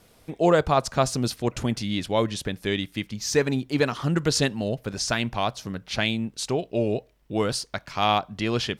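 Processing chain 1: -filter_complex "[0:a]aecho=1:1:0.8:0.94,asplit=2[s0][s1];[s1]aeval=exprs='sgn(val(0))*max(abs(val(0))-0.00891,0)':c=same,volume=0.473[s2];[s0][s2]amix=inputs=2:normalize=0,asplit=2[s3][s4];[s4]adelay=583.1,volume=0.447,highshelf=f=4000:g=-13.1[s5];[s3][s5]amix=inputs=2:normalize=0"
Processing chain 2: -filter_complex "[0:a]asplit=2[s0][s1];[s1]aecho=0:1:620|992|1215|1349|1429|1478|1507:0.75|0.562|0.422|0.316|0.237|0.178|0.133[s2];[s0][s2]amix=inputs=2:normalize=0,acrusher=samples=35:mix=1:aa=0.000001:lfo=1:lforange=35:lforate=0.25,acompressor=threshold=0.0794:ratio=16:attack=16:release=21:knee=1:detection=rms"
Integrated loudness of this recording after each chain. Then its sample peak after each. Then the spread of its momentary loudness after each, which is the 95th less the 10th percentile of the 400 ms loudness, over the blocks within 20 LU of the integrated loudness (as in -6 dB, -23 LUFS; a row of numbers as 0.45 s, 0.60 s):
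-19.5 LUFS, -24.5 LUFS; -2.0 dBFS, -9.0 dBFS; 6 LU, 3 LU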